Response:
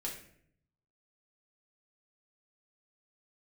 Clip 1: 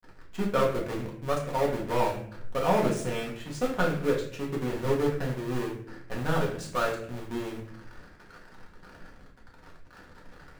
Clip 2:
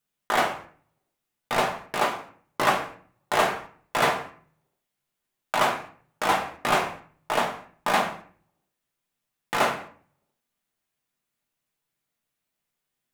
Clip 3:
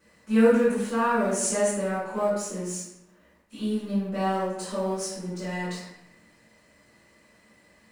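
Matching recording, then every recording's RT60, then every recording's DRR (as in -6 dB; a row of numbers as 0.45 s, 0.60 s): 1; 0.65 s, 0.45 s, 0.90 s; -3.5 dB, -0.5 dB, -13.0 dB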